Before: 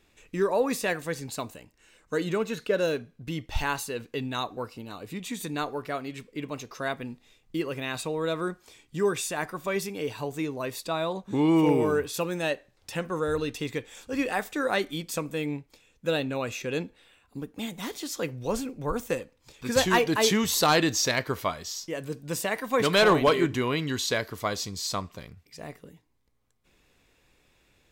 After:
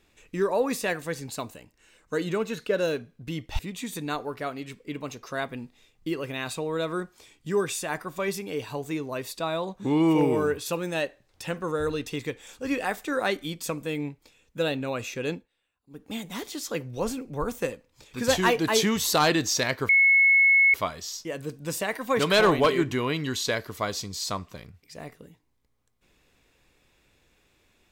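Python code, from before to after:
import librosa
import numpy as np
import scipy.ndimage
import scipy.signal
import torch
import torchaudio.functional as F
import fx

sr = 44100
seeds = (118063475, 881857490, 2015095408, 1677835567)

y = fx.edit(x, sr, fx.cut(start_s=3.59, length_s=1.48),
    fx.fade_down_up(start_s=16.82, length_s=0.7, db=-19.0, fade_s=0.14),
    fx.insert_tone(at_s=21.37, length_s=0.85, hz=2190.0, db=-15.0), tone=tone)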